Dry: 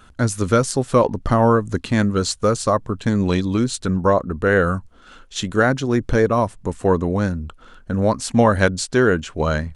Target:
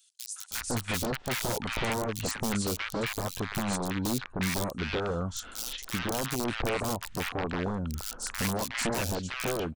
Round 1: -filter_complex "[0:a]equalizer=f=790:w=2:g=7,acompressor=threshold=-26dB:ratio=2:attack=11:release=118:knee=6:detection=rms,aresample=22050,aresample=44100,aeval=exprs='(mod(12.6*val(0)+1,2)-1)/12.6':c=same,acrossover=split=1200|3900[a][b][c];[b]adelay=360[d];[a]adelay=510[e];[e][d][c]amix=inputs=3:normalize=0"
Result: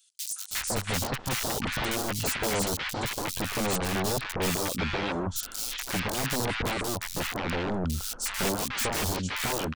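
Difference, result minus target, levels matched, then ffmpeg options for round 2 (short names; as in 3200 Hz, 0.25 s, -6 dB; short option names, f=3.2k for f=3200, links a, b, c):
compressor: peak gain reduction -5 dB
-filter_complex "[0:a]equalizer=f=790:w=2:g=7,acompressor=threshold=-36dB:ratio=2:attack=11:release=118:knee=6:detection=rms,aresample=22050,aresample=44100,aeval=exprs='(mod(12.6*val(0)+1,2)-1)/12.6':c=same,acrossover=split=1200|3900[a][b][c];[b]adelay=360[d];[a]adelay=510[e];[e][d][c]amix=inputs=3:normalize=0"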